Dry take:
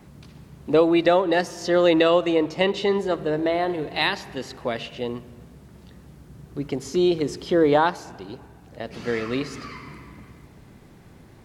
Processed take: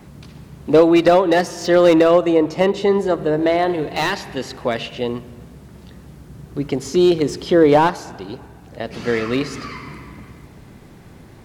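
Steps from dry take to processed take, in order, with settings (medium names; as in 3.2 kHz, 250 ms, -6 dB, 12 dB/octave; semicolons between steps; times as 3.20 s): 1.98–3.41 s: dynamic bell 3.2 kHz, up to -8 dB, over -40 dBFS, Q 0.78; slew-rate limiter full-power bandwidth 150 Hz; trim +6 dB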